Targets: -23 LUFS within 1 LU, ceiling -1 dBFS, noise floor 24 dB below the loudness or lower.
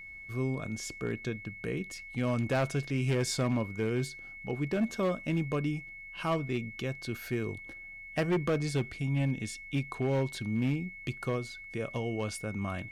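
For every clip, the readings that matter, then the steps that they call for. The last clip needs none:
clipped 1.7%; flat tops at -23.5 dBFS; steady tone 2200 Hz; tone level -44 dBFS; loudness -33.0 LUFS; peak -23.5 dBFS; loudness target -23.0 LUFS
-> clip repair -23.5 dBFS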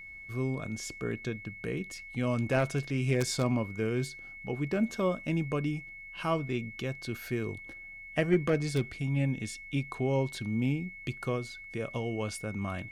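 clipped 0.0%; steady tone 2200 Hz; tone level -44 dBFS
-> notch 2200 Hz, Q 30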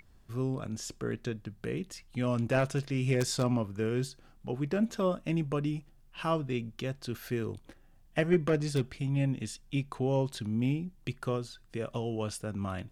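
steady tone none; loudness -33.0 LUFS; peak -14.5 dBFS; loudness target -23.0 LUFS
-> gain +10 dB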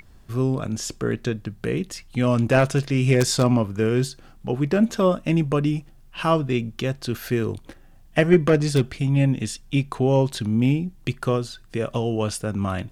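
loudness -23.0 LUFS; peak -4.5 dBFS; noise floor -49 dBFS

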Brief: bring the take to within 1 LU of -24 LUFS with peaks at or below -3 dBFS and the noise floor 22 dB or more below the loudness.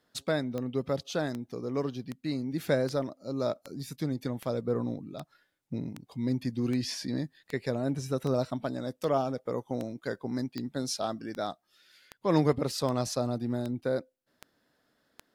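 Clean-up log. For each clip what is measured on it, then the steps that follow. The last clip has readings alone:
clicks 20; loudness -32.5 LUFS; peak -12.5 dBFS; loudness target -24.0 LUFS
-> de-click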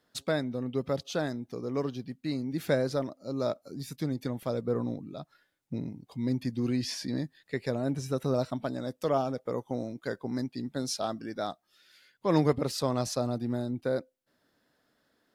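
clicks 0; loudness -32.5 LUFS; peak -12.5 dBFS; loudness target -24.0 LUFS
-> gain +8.5 dB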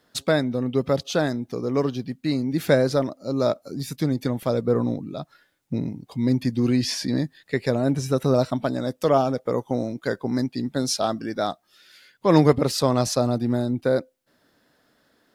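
loudness -24.0 LUFS; peak -4.0 dBFS; noise floor -66 dBFS

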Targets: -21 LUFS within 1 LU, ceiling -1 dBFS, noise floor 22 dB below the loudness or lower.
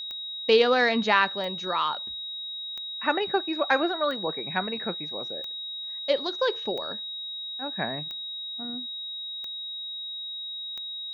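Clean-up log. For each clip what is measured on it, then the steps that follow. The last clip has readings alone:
clicks 9; steady tone 3800 Hz; tone level -33 dBFS; loudness -28.0 LUFS; peak -6.5 dBFS; loudness target -21.0 LUFS
-> de-click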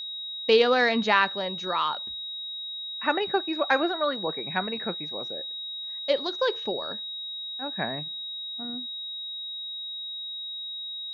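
clicks 0; steady tone 3800 Hz; tone level -33 dBFS
-> notch 3800 Hz, Q 30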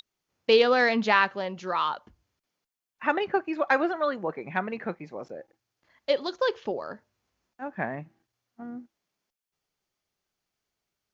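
steady tone none; loudness -26.5 LUFS; peak -7.0 dBFS; loudness target -21.0 LUFS
-> gain +5.5 dB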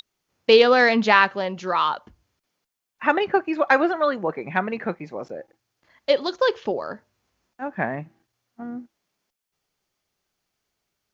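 loudness -21.0 LUFS; peak -1.5 dBFS; noise floor -82 dBFS

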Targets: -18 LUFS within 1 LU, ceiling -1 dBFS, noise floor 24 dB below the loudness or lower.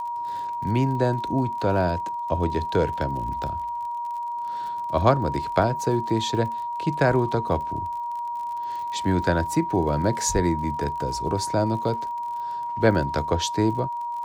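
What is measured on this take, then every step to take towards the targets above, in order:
ticks 41/s; steady tone 950 Hz; tone level -27 dBFS; loudness -25.0 LUFS; peak -5.0 dBFS; loudness target -18.0 LUFS
-> de-click; notch 950 Hz, Q 30; gain +7 dB; limiter -1 dBFS

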